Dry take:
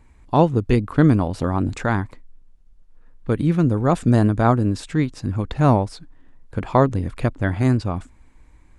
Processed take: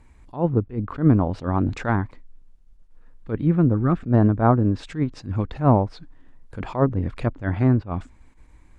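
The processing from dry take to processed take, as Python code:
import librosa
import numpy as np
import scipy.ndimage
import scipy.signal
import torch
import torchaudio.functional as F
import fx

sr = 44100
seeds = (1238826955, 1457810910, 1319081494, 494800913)

y = fx.env_lowpass_down(x, sr, base_hz=1400.0, full_db=-14.5)
y = fx.spec_box(y, sr, start_s=3.74, length_s=0.27, low_hz=390.0, high_hz=1100.0, gain_db=-11)
y = fx.attack_slew(y, sr, db_per_s=210.0)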